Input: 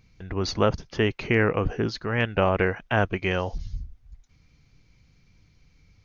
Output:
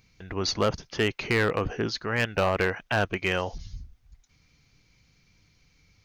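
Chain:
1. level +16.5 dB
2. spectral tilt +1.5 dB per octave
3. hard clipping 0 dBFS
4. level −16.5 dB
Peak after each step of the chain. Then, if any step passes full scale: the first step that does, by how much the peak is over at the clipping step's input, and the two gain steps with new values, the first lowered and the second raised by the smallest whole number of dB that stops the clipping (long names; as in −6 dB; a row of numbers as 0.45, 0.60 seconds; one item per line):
+9.0, +8.5, 0.0, −16.5 dBFS
step 1, 8.5 dB
step 1 +7.5 dB, step 4 −7.5 dB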